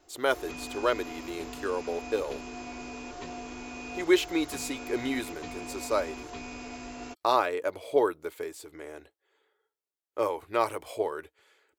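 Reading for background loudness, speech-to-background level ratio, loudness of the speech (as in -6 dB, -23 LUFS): -41.0 LUFS, 10.5 dB, -30.5 LUFS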